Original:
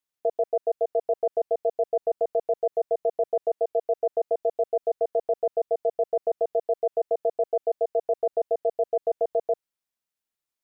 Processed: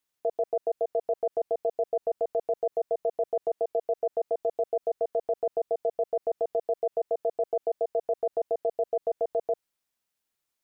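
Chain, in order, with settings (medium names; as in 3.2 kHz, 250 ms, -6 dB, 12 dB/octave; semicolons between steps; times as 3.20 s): peak limiter -24 dBFS, peak gain reduction 8.5 dB; trim +5 dB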